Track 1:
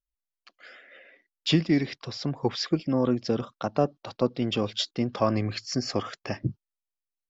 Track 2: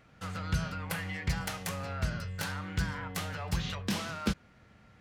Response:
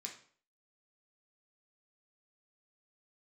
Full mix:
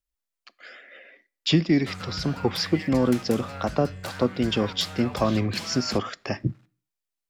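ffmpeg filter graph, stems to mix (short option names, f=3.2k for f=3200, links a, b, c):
-filter_complex "[0:a]acrossover=split=300[a][b];[b]acompressor=threshold=-26dB:ratio=2[c];[a][c]amix=inputs=2:normalize=0,volume=3dB,asplit=2[d][e];[e]volume=-14.5dB[f];[1:a]alimiter=level_in=2dB:limit=-24dB:level=0:latency=1:release=186,volume=-2dB,aeval=exprs='sgn(val(0))*max(abs(val(0))-0.00133,0)':c=same,adelay=1650,volume=1dB,asplit=2[g][h];[h]volume=-6dB[i];[2:a]atrim=start_sample=2205[j];[f][i]amix=inputs=2:normalize=0[k];[k][j]afir=irnorm=-1:irlink=0[l];[d][g][l]amix=inputs=3:normalize=0"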